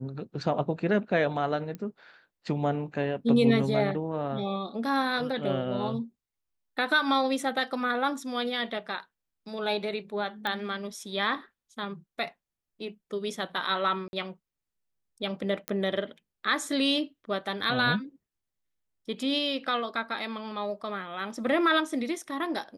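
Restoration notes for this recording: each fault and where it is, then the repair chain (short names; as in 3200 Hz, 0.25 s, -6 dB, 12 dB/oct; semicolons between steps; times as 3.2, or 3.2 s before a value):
1.75 pop -25 dBFS
10.47 pop -18 dBFS
14.08–14.13 gap 51 ms
15.68 pop -13 dBFS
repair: de-click; interpolate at 14.08, 51 ms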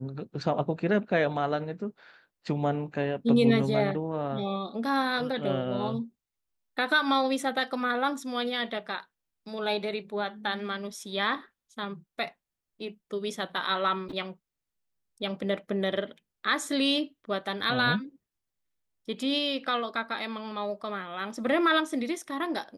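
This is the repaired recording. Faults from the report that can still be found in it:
none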